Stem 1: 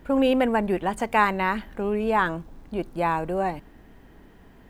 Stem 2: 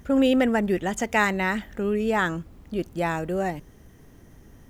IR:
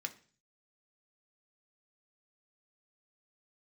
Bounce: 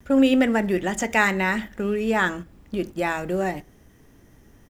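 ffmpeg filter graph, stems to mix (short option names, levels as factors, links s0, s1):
-filter_complex "[0:a]asoftclip=type=tanh:threshold=0.0794,acrusher=bits=5:mix=0:aa=0.5,volume=0.178,asplit=2[s0][s1];[1:a]adelay=5.3,volume=1.26,asplit=2[s2][s3];[s3]volume=0.631[s4];[s1]apad=whole_len=207072[s5];[s2][s5]sidechaincompress=threshold=0.00562:ratio=8:attack=16:release=404[s6];[2:a]atrim=start_sample=2205[s7];[s4][s7]afir=irnorm=-1:irlink=0[s8];[s0][s6][s8]amix=inputs=3:normalize=0,agate=range=0.501:threshold=0.0224:ratio=16:detection=peak"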